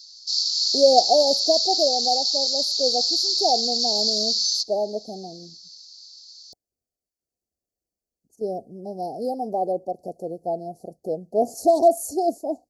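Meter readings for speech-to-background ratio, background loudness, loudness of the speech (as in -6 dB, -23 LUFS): -4.0 dB, -20.5 LUFS, -24.5 LUFS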